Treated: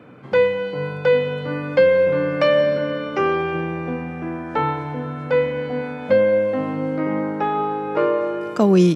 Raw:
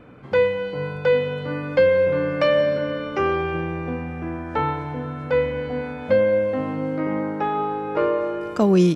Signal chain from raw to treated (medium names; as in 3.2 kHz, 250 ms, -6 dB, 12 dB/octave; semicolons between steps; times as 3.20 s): high-pass 110 Hz 24 dB/octave; trim +2 dB